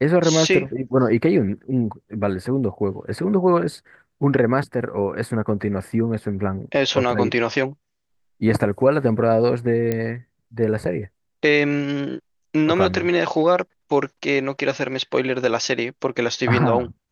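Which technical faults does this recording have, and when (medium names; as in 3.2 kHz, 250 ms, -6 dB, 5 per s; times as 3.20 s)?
9.92 s: pop -10 dBFS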